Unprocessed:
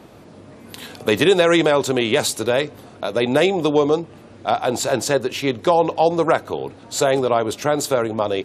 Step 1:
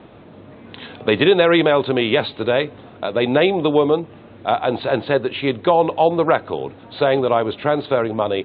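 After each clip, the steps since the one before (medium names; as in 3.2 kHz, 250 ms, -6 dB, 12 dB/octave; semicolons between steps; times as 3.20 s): steep low-pass 3.9 kHz 96 dB/octave; trim +1 dB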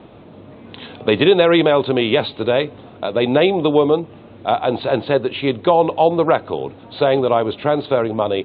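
peaking EQ 1.7 kHz -4.5 dB 0.79 oct; trim +1.5 dB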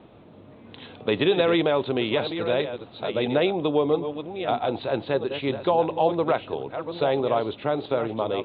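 chunks repeated in reverse 655 ms, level -9 dB; trim -8 dB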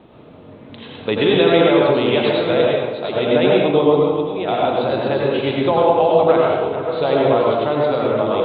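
reverberation RT60 1.2 s, pre-delay 83 ms, DRR -3.5 dB; trim +3 dB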